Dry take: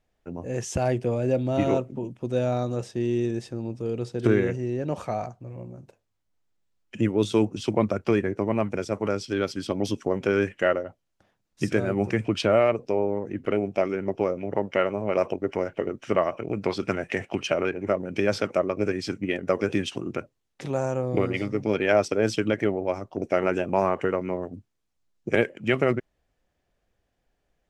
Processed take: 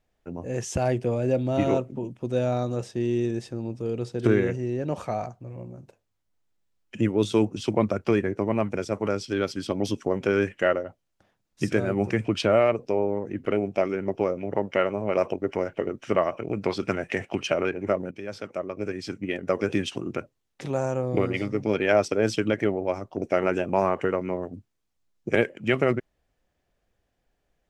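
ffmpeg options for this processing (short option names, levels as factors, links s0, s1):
-filter_complex "[0:a]asplit=2[s0][s1];[s0]atrim=end=18.11,asetpts=PTS-STARTPTS,afade=t=out:st=18.106:d=0.004:c=hsin:silence=0.16788[s2];[s1]atrim=start=18.11,asetpts=PTS-STARTPTS,afade=t=in:d=1.64:silence=0.16788[s3];[s2][s3]concat=n=2:v=0:a=1"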